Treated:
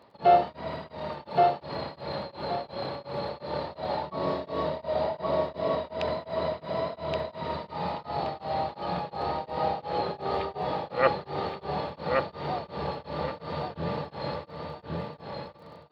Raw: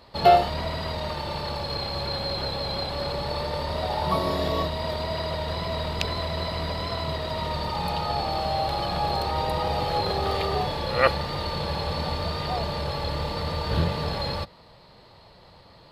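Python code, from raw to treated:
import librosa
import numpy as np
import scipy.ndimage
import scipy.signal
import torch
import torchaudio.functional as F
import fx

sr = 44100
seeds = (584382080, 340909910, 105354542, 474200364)

y = scipy.signal.sosfilt(scipy.signal.butter(2, 170.0, 'highpass', fs=sr, output='sos'), x)
y = fx.spacing_loss(y, sr, db_at_10k=28)
y = fx.echo_feedback(y, sr, ms=1124, feedback_pct=28, wet_db=-3.5)
y = fx.dmg_crackle(y, sr, seeds[0], per_s=28.0, level_db=-50.0)
y = fx.peak_eq(y, sr, hz=610.0, db=5.5, octaves=0.55, at=(4.67, 7.33))
y = y * np.abs(np.cos(np.pi * 2.8 * np.arange(len(y)) / sr))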